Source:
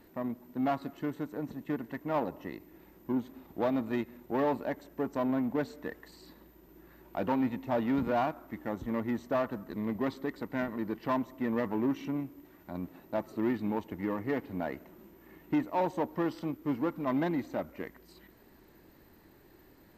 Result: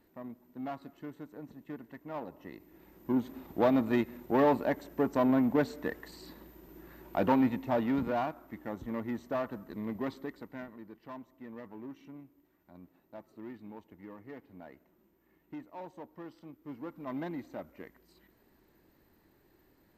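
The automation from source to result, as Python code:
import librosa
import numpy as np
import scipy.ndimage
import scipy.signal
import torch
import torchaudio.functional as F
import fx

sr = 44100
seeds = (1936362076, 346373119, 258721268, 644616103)

y = fx.gain(x, sr, db=fx.line((2.22, -9.0), (3.32, 4.0), (7.3, 4.0), (8.28, -3.5), (10.16, -3.5), (10.89, -15.0), (16.44, -15.0), (17.17, -7.5)))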